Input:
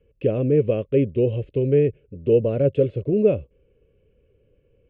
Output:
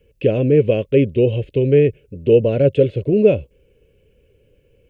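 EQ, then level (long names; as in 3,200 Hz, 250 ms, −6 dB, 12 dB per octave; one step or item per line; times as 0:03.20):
high-shelf EQ 2,400 Hz +11.5 dB
notch filter 1,200 Hz, Q 5.2
+4.5 dB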